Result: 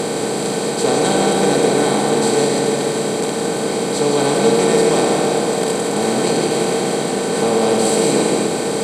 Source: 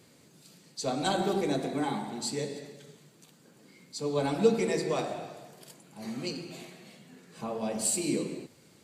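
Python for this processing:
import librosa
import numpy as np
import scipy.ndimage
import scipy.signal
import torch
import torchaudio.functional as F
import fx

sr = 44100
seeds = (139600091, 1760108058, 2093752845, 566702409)

y = fx.bin_compress(x, sr, power=0.2)
y = fx.high_shelf(y, sr, hz=9500.0, db=-9.0)
y = y + 10.0 ** (-6.5 / 20.0) * np.pad(y, (int(162 * sr / 1000.0), 0))[:len(y)]
y = y * 10.0 ** (4.5 / 20.0)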